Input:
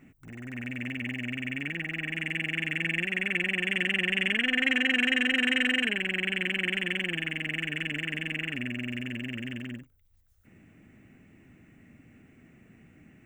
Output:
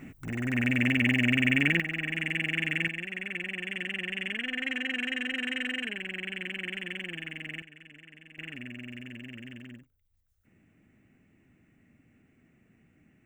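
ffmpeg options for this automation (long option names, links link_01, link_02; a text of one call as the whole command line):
ffmpeg -i in.wav -af "asetnsamples=nb_out_samples=441:pad=0,asendcmd='1.8 volume volume 1dB;2.88 volume volume -7dB;7.62 volume volume -19.5dB;8.38 volume volume -8dB',volume=9.5dB" out.wav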